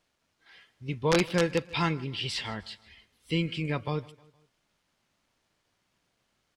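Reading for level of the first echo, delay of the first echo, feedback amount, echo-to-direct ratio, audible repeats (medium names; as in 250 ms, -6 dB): -22.0 dB, 155 ms, 46%, -21.0 dB, 2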